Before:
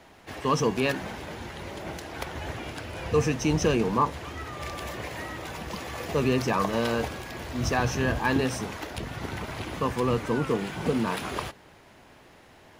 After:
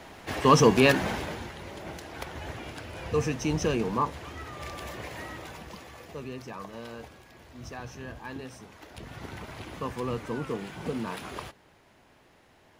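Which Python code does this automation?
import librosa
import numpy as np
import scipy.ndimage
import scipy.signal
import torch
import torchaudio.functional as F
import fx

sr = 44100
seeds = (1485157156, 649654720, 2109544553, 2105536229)

y = fx.gain(x, sr, db=fx.line((1.15, 6.0), (1.57, -3.5), (5.34, -3.5), (6.26, -15.0), (8.7, -15.0), (9.13, -6.5)))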